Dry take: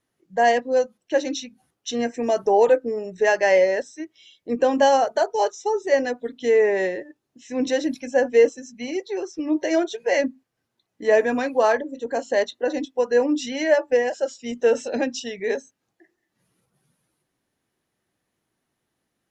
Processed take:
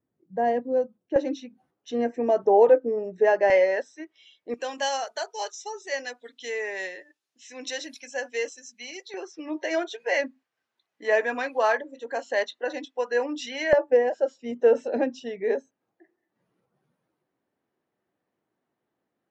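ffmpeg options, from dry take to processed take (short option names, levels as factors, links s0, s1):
-af "asetnsamples=n=441:p=0,asendcmd='1.16 bandpass f 480;3.5 bandpass f 1200;4.54 bandpass f 4600;9.14 bandpass f 1800;13.73 bandpass f 530',bandpass=f=190:t=q:w=0.55:csg=0"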